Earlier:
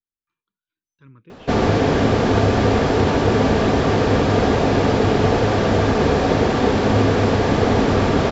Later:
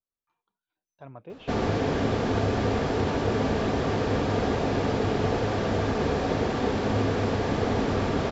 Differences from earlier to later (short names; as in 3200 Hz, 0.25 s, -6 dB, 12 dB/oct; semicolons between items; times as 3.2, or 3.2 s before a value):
speech: remove Butterworth band-stop 690 Hz, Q 0.76; background -9.0 dB